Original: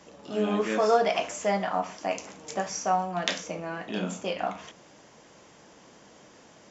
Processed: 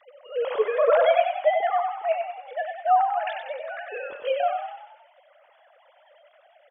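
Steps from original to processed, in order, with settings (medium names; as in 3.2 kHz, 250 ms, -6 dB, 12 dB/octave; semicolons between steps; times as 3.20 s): formants replaced by sine waves; frequency-shifting echo 94 ms, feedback 51%, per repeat +31 Hz, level -5.5 dB; trim +3 dB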